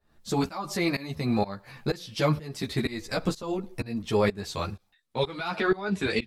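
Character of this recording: tremolo saw up 2.1 Hz, depth 95%; a shimmering, thickened sound

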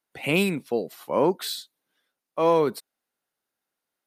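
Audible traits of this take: noise floor -86 dBFS; spectral tilt -4.0 dB/oct

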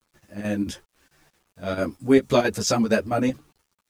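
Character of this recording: chopped level 4.5 Hz, depth 60%, duty 80%; a quantiser's noise floor 10-bit, dither none; a shimmering, thickened sound

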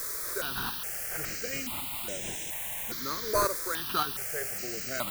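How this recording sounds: aliases and images of a low sample rate 5300 Hz; chopped level 1.8 Hz, depth 60%, duty 25%; a quantiser's noise floor 6-bit, dither triangular; notches that jump at a steady rate 2.4 Hz 790–4500 Hz

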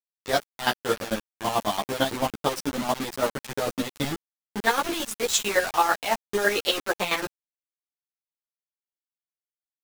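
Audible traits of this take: chopped level 9 Hz, depth 65%, duty 30%; a quantiser's noise floor 6-bit, dither none; a shimmering, thickened sound

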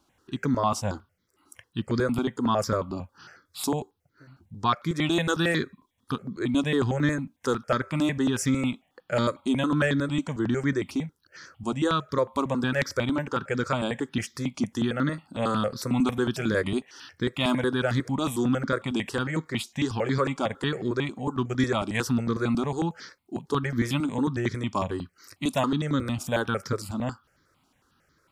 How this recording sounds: notches that jump at a steady rate 11 Hz 490–2700 Hz

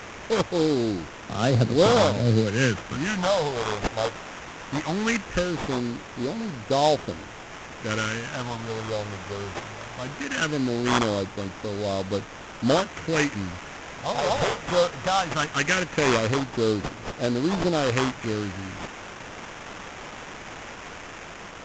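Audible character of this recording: a quantiser's noise floor 6-bit, dither triangular; phasing stages 4, 0.19 Hz, lowest notch 270–2400 Hz; aliases and images of a low sample rate 4400 Hz, jitter 20%; µ-law

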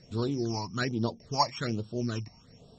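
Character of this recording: a buzz of ramps at a fixed pitch in blocks of 8 samples; phasing stages 8, 1.2 Hz, lowest notch 430–2000 Hz; MP3

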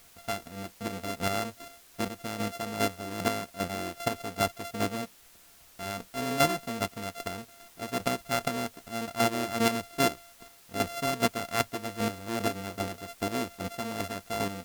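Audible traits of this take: a buzz of ramps at a fixed pitch in blocks of 64 samples; chopped level 2.5 Hz, depth 60%, duty 20%; a quantiser's noise floor 10-bit, dither triangular; Vorbis

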